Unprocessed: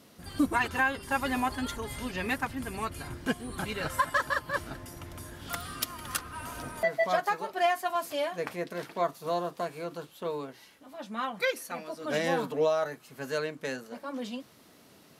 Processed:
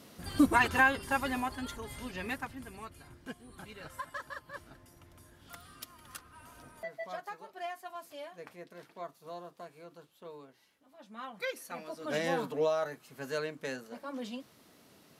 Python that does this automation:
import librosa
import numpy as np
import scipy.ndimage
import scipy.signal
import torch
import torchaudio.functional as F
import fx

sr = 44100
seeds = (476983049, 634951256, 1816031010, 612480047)

y = fx.gain(x, sr, db=fx.line((0.86, 2.0), (1.5, -6.0), (2.29, -6.0), (3.02, -14.0), (10.92, -14.0), (11.86, -3.5)))